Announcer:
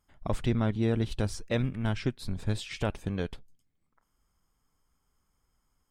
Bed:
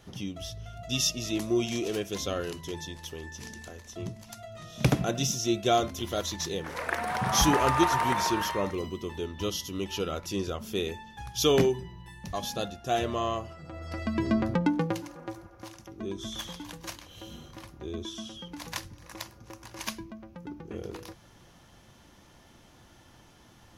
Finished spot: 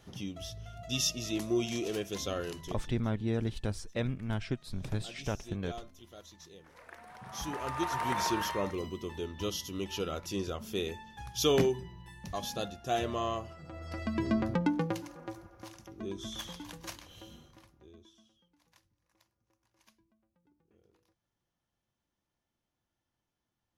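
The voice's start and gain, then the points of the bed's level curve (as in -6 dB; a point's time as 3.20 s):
2.45 s, -4.5 dB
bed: 2.62 s -3.5 dB
3.06 s -20.5 dB
7.18 s -20.5 dB
8.21 s -3.5 dB
17.11 s -3.5 dB
18.51 s -30.5 dB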